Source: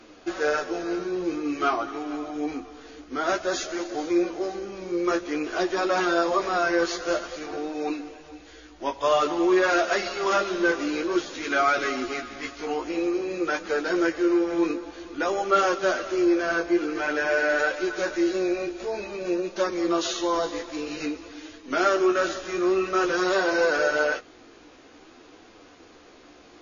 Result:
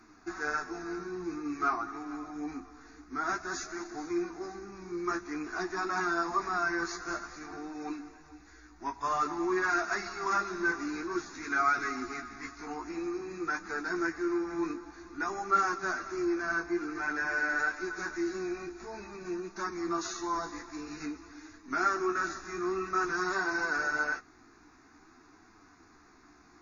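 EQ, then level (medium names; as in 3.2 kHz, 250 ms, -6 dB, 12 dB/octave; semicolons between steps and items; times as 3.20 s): static phaser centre 1.3 kHz, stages 4; -3.5 dB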